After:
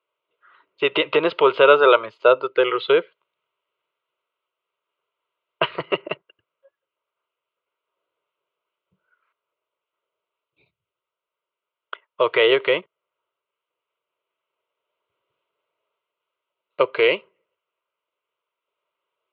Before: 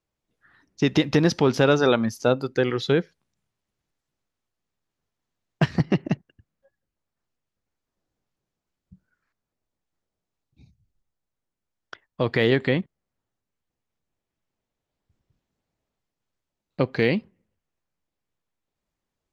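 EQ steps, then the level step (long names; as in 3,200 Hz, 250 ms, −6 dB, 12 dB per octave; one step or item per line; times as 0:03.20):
loudspeaker in its box 410–3,600 Hz, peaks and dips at 410 Hz +4 dB, 620 Hz +4 dB, 920 Hz +10 dB, 1,300 Hz +5 dB, 1,900 Hz +9 dB, 2,900 Hz +6 dB
phaser with its sweep stopped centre 1,200 Hz, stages 8
+5.0 dB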